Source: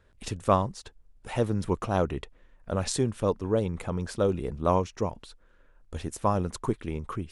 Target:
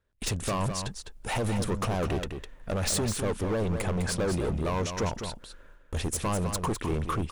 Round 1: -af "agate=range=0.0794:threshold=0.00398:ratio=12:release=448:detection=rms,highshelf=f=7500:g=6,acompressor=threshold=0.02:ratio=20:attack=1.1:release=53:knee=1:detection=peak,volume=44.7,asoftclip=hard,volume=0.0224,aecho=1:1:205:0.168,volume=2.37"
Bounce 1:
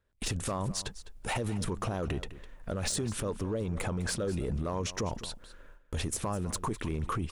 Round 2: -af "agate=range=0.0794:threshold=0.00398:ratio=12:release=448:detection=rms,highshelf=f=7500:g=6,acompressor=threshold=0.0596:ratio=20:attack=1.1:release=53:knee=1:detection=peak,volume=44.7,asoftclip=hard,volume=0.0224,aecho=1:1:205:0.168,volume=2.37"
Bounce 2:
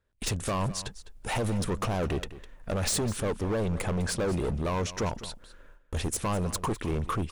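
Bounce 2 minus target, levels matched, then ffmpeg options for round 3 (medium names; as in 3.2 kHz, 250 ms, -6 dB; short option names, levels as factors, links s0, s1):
echo-to-direct -8 dB
-af "agate=range=0.0794:threshold=0.00398:ratio=12:release=448:detection=rms,highshelf=f=7500:g=6,acompressor=threshold=0.0596:ratio=20:attack=1.1:release=53:knee=1:detection=peak,volume=44.7,asoftclip=hard,volume=0.0224,aecho=1:1:205:0.422,volume=2.37"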